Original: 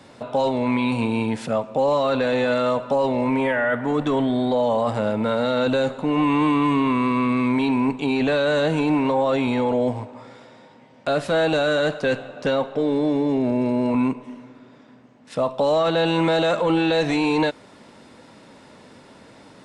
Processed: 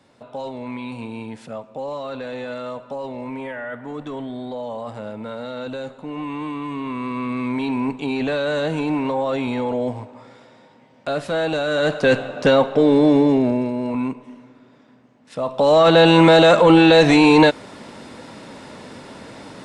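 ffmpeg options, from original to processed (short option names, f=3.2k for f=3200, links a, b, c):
-af "volume=18.5dB,afade=t=in:st=6.68:d=1.14:silence=0.421697,afade=t=in:st=11.68:d=0.5:silence=0.354813,afade=t=out:st=13.18:d=0.53:silence=0.316228,afade=t=in:st=15.41:d=0.52:silence=0.266073"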